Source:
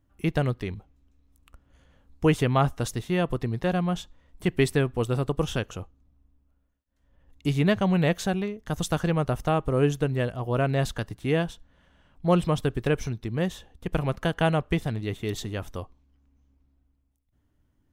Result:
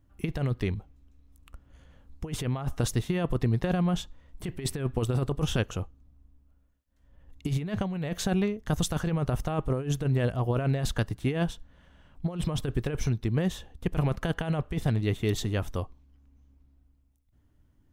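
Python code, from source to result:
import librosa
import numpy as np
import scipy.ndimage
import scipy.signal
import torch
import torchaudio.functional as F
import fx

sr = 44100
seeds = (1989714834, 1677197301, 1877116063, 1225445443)

y = fx.low_shelf(x, sr, hz=170.0, db=4.5)
y = fx.over_compress(y, sr, threshold_db=-24.0, ratio=-0.5)
y = y * 10.0 ** (-1.5 / 20.0)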